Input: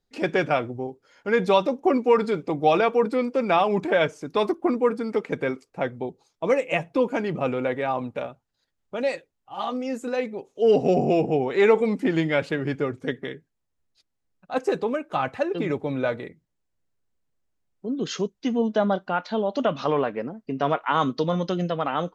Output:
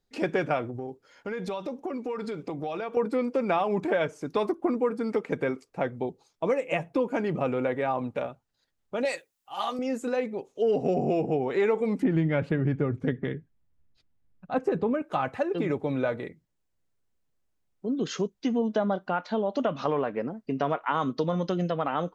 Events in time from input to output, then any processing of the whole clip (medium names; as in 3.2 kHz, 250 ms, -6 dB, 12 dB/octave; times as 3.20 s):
0.68–2.97 s: compression, threshold -30 dBFS
9.05–9.79 s: tilt EQ +3.5 dB/octave
12.02–15.02 s: tone controls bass +11 dB, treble -11 dB
whole clip: dynamic bell 4.1 kHz, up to -5 dB, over -42 dBFS, Q 0.71; compression 3:1, threshold -23 dBFS